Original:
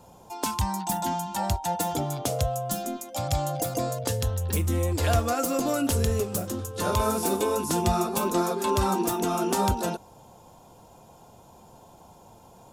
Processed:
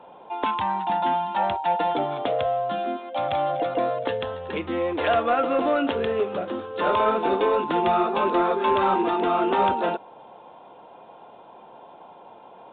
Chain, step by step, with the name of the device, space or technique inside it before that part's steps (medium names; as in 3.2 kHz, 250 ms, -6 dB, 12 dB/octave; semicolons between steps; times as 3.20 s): telephone (band-pass 370–3200 Hz; saturation -19.5 dBFS, distortion -21 dB; trim +7.5 dB; µ-law 64 kbps 8 kHz)